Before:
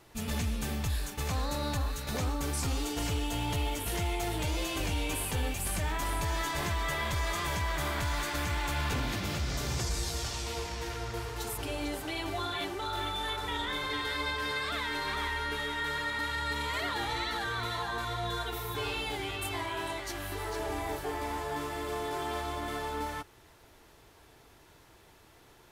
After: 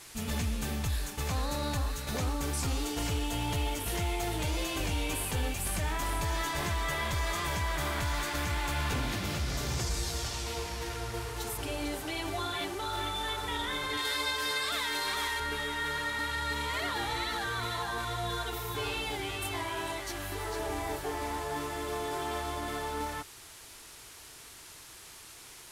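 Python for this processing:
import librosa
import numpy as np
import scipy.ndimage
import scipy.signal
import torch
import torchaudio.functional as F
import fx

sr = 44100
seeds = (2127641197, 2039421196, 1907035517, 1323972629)

y = fx.bass_treble(x, sr, bass_db=-8, treble_db=10, at=(13.97, 15.4))
y = fx.dmg_noise_band(y, sr, seeds[0], low_hz=860.0, high_hz=12000.0, level_db=-51.0)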